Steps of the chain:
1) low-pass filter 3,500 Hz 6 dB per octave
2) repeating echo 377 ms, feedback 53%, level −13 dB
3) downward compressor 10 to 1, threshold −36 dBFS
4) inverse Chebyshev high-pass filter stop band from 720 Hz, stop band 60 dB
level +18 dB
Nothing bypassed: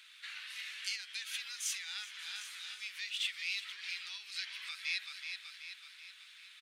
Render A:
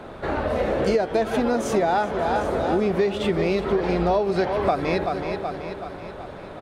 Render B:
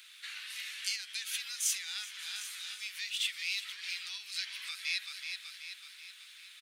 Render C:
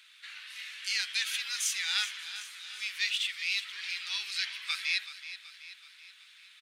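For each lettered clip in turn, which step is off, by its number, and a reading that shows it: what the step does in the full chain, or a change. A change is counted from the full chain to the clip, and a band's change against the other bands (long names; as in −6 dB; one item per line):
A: 4, 1 kHz band +35.0 dB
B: 1, 8 kHz band +5.0 dB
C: 3, average gain reduction 4.5 dB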